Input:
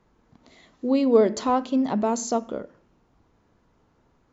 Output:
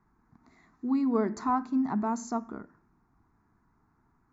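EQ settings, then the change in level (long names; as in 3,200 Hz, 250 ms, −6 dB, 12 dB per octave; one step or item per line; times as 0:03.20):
low-shelf EQ 150 Hz −5.5 dB
high-shelf EQ 3,000 Hz −11.5 dB
phaser with its sweep stopped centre 1,300 Hz, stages 4
0.0 dB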